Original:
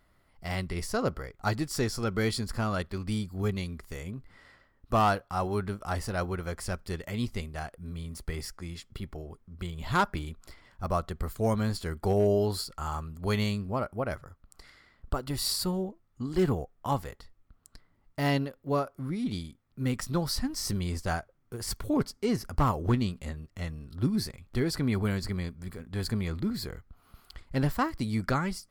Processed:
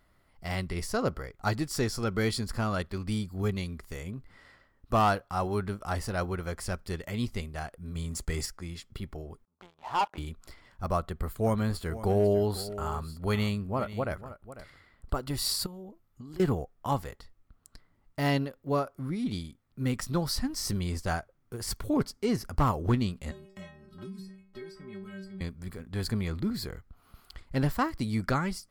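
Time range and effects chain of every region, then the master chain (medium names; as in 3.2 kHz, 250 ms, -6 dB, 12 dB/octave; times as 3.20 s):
7.95–8.46 s: peaking EQ 7.2 kHz +10.5 dB 0.46 oct + waveshaping leveller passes 1
9.45–10.18 s: band-pass filter 850 Hz, Q 4.9 + waveshaping leveller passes 3
10.97–15.15 s: peaking EQ 5.7 kHz -6 dB 0.8 oct + delay 497 ms -14.5 dB
15.66–16.40 s: peaking EQ 13 kHz +12.5 dB 0.22 oct + band-stop 1.8 kHz, Q 29 + compression 16:1, threshold -40 dBFS
23.31–25.41 s: treble shelf 6.4 kHz -10.5 dB + inharmonic resonator 190 Hz, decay 0.56 s, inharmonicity 0.008 + three bands compressed up and down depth 100%
whole clip: none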